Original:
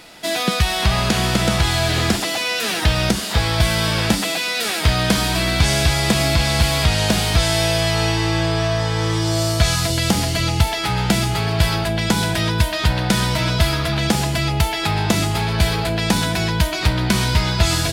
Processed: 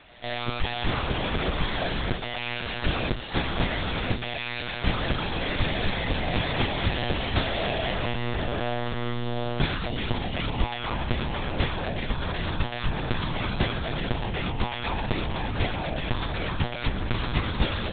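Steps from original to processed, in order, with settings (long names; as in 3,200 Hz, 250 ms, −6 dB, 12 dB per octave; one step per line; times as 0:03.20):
one-pitch LPC vocoder at 8 kHz 120 Hz
echo ahead of the sound 154 ms −23.5 dB
level −8.5 dB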